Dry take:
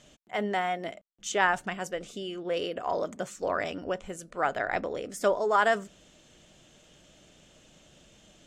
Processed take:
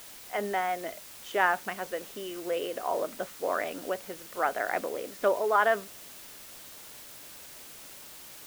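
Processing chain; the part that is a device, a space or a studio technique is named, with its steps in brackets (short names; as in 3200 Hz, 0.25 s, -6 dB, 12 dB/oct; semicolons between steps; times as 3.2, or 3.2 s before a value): wax cylinder (BPF 280–2600 Hz; wow and flutter 23 cents; white noise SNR 15 dB)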